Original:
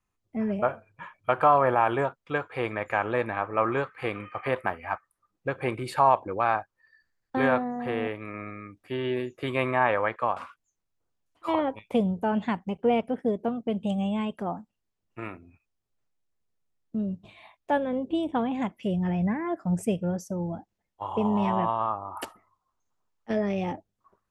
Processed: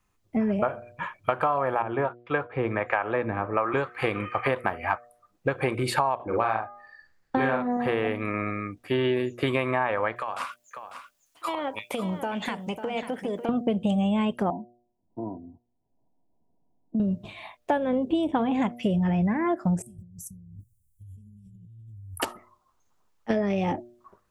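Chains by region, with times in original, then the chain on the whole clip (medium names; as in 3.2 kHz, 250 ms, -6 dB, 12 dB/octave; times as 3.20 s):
1.82–3.74 s: low-pass 2.6 kHz + harmonic tremolo 1.3 Hz, crossover 400 Hz
6.15–7.77 s: treble shelf 6.1 kHz -6.5 dB + doubling 45 ms -3.5 dB + de-hum 409.1 Hz, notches 5
10.16–13.49 s: tilt EQ +3 dB/octave + compression 16:1, threshold -34 dBFS + delay 547 ms -10 dB
14.50–17.00 s: rippled Chebyshev low-pass 1 kHz, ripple 9 dB + three bands compressed up and down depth 40%
19.82–22.20 s: Chebyshev band-stop 110–8800 Hz, order 3 + compressor with a negative ratio -55 dBFS
whole clip: de-hum 120 Hz, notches 6; compression 10:1, threshold -30 dBFS; trim +9 dB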